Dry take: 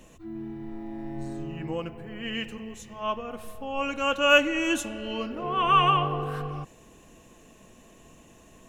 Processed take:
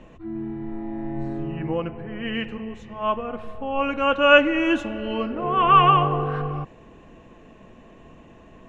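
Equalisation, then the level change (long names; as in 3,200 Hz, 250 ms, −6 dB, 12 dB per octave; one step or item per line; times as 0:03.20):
low-pass filter 2,300 Hz 12 dB per octave
+6.0 dB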